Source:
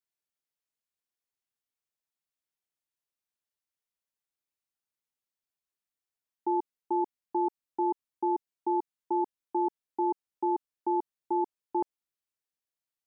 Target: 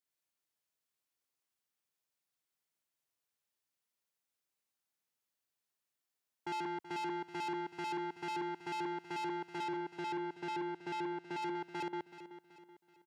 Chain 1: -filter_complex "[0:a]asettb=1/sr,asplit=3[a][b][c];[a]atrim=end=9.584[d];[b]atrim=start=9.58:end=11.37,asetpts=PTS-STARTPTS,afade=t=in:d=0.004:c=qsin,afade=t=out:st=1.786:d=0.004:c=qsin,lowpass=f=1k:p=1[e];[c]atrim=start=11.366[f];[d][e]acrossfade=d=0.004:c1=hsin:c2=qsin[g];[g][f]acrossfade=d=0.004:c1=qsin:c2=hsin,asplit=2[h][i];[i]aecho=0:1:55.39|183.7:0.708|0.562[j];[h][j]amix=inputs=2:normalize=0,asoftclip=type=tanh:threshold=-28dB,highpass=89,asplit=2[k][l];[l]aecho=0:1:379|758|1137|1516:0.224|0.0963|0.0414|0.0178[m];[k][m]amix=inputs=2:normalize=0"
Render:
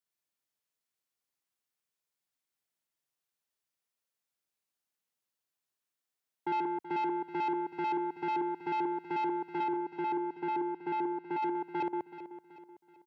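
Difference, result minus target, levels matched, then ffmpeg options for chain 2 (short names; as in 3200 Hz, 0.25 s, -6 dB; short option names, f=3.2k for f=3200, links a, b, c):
soft clip: distortion -6 dB
-filter_complex "[0:a]asettb=1/sr,asplit=3[a][b][c];[a]atrim=end=9.584[d];[b]atrim=start=9.58:end=11.37,asetpts=PTS-STARTPTS,afade=t=in:d=0.004:c=qsin,afade=t=out:st=1.786:d=0.004:c=qsin,lowpass=f=1k:p=1[e];[c]atrim=start=11.366[f];[d][e]acrossfade=d=0.004:c1=hsin:c2=qsin[g];[g][f]acrossfade=d=0.004:c1=qsin:c2=hsin,asplit=2[h][i];[i]aecho=0:1:55.39|183.7:0.708|0.562[j];[h][j]amix=inputs=2:normalize=0,asoftclip=type=tanh:threshold=-37dB,highpass=89,asplit=2[k][l];[l]aecho=0:1:379|758|1137|1516:0.224|0.0963|0.0414|0.0178[m];[k][m]amix=inputs=2:normalize=0"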